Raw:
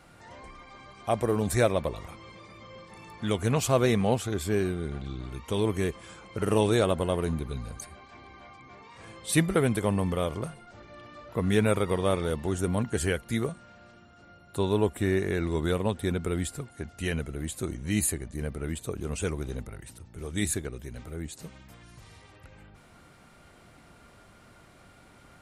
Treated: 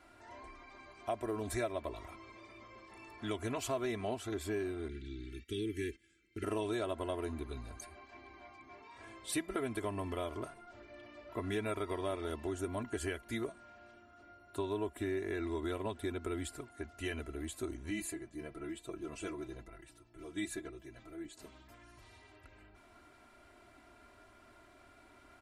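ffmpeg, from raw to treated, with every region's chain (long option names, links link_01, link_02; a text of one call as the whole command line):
ffmpeg -i in.wav -filter_complex "[0:a]asettb=1/sr,asplit=3[link_01][link_02][link_03];[link_01]atrim=end=4.884[link_04];[link_02]atrim=start=4.88:end=6.44,asetpts=PTS-STARTPTS,afade=type=in:duration=0.004:curve=qsin,afade=type=out:start_time=1.556:duration=0.004:curve=qsin,asuperstop=centerf=810:order=8:qfactor=0.66,agate=range=-15dB:threshold=-45dB:ratio=16:release=100:detection=peak[link_05];[link_03]atrim=start=6.436[link_06];[link_04][link_05]acrossfade=duration=0.004:curve1=hsin:curve2=qsin[link_07];[link_07][link_06]acrossfade=duration=0.004:curve1=qsin:curve2=hsin,asettb=1/sr,asplit=3[link_08][link_09][link_10];[link_08]atrim=end=17.904[link_11];[link_09]atrim=start=17.9:end=21.37,asetpts=PTS-STARTPTS,afade=type=in:duration=0.004:curve=qsin,afade=type=out:start_time=3.466:duration=0.004:curve=qsin,flanger=delay=3.8:depth=5.9:regen=-68:speed=1.1:shape=triangular,highshelf=frequency=9800:gain=-8.5,aecho=1:1:6:0.79,atrim=end_sample=153027[link_12];[link_10]atrim=start=21.366[link_13];[link_11][link_12]acrossfade=duration=0.004:curve1=hsin:curve2=qsin[link_14];[link_14][link_13]acrossfade=duration=0.004:curve1=qsin:curve2=hsin,bass=frequency=250:gain=-5,treble=frequency=4000:gain=-5,aecho=1:1:3:0.83,acompressor=threshold=-28dB:ratio=3,volume=-6.5dB" out.wav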